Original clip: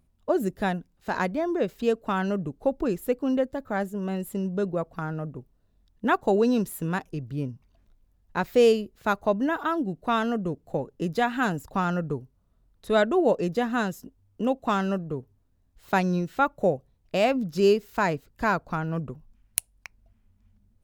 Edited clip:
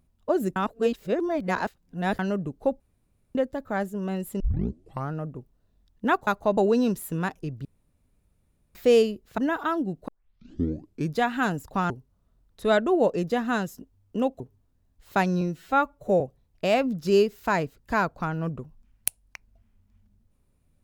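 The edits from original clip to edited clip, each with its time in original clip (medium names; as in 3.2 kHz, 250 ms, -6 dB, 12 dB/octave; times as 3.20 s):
0.56–2.19 s: reverse
2.80–3.35 s: room tone
4.40 s: tape start 0.73 s
7.35–8.45 s: room tone
9.08–9.38 s: move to 6.27 s
10.08 s: tape start 1.08 s
11.90–12.15 s: delete
14.65–15.17 s: delete
16.18–16.71 s: stretch 1.5×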